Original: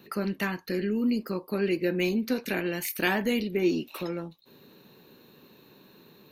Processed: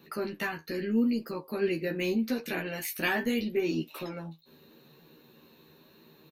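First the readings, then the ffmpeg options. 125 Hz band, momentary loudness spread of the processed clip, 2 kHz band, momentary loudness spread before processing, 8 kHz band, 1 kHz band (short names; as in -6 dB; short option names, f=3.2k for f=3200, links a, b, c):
-4.0 dB, 10 LU, -1.5 dB, 8 LU, -2.5 dB, -2.5 dB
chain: -filter_complex "[0:a]asplit=2[a][b];[b]adelay=13,volume=-3dB[c];[a][c]amix=inputs=2:normalize=0,flanger=delay=6:depth=6.5:regen=59:speed=0.79:shape=sinusoidal"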